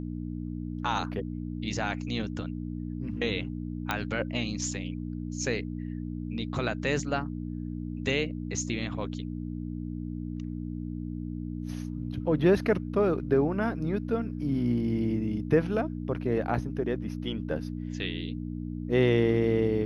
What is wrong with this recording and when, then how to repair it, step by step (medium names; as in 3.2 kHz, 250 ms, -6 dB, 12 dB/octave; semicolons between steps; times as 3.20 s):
hum 60 Hz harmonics 5 -35 dBFS
3.91 s: pop -13 dBFS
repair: de-click; de-hum 60 Hz, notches 5